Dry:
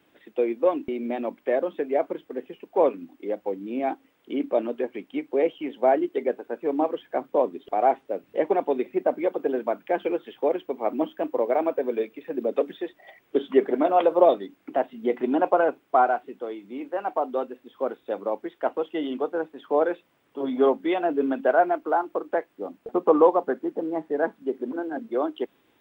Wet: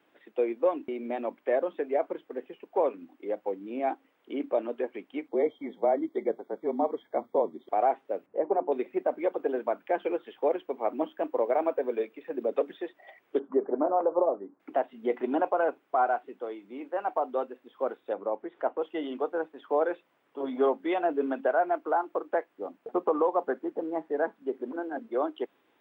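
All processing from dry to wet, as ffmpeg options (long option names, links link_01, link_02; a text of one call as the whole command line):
ffmpeg -i in.wav -filter_complex "[0:a]asettb=1/sr,asplit=3[link_01][link_02][link_03];[link_01]atrim=end=5.284[link_04];[link_02]atrim=start=5.28:end=7.69,asetpts=PTS-STARTPTS,afade=type=in:duration=0.004:curve=qsin,afade=type=out:start_time=2.406:duration=0.004:curve=qsin,equalizer=frequency=1600:width_type=o:width=0.45:gain=-9.5,afreqshift=-31,asuperstop=centerf=2700:order=20:qfactor=3.1[link_05];[link_03]atrim=start=7.686[link_06];[link_04][link_05]acrossfade=duration=0.004:curve1=hsin:curve2=qsin[link_07];[link_07][link_06]acrossfade=duration=0.004:curve1=qsin:curve2=hsin,asettb=1/sr,asplit=3[link_08][link_09][link_10];[link_08]atrim=end=8.264[link_11];[link_09]atrim=start=8.26:end=8.72,asetpts=PTS-STARTPTS,afade=type=in:duration=0.004:curve=qsin,afade=type=out:start_time=0.456:duration=0.004:curve=qsin,lowpass=1000,bandreject=frequency=60:width_type=h:width=6,bandreject=frequency=120:width_type=h:width=6,bandreject=frequency=180:width_type=h:width=6,bandreject=frequency=240:width_type=h:width=6,bandreject=frequency=300:width_type=h:width=6,bandreject=frequency=360:width_type=h:width=6[link_12];[link_10]atrim=start=8.716[link_13];[link_11][link_12]acrossfade=duration=0.004:curve1=hsin:curve2=qsin[link_14];[link_14][link_13]acrossfade=duration=0.004:curve1=qsin:curve2=hsin,asettb=1/sr,asplit=3[link_15][link_16][link_17];[link_15]atrim=end=13.394[link_18];[link_16]atrim=start=13.39:end=14.6,asetpts=PTS-STARTPTS,afade=type=in:duration=0.004:curve=qsin,afade=type=out:start_time=1.206:duration=0.004:curve=qsin,lowpass=frequency=1200:width=0.5412,lowpass=frequency=1200:width=1.3066,bandreject=frequency=690:width=16[link_19];[link_17]atrim=start=14.596[link_20];[link_18][link_19]acrossfade=duration=0.004:curve1=hsin:curve2=qsin[link_21];[link_21][link_20]acrossfade=duration=0.004:curve1=qsin:curve2=hsin,asettb=1/sr,asplit=3[link_22][link_23][link_24];[link_22]atrim=end=18.134[link_25];[link_23]atrim=start=18.13:end=18.82,asetpts=PTS-STARTPTS,afade=type=in:duration=0.004:curve=qsin,afade=type=out:start_time=0.686:duration=0.004:curve=qsin,lowpass=frequency=1300:poles=1,acompressor=mode=upward:threshold=-32dB:ratio=2.5:attack=3.2:release=140:knee=2.83:detection=peak[link_26];[link_24]atrim=start=18.816[link_27];[link_25][link_26]acrossfade=duration=0.004:curve1=hsin:curve2=qsin[link_28];[link_28][link_27]acrossfade=duration=0.004:curve1=qsin:curve2=hsin,highpass=frequency=560:poles=1,highshelf=frequency=2800:gain=-11.5,alimiter=limit=-16.5dB:level=0:latency=1:release=172,volume=1dB" out.wav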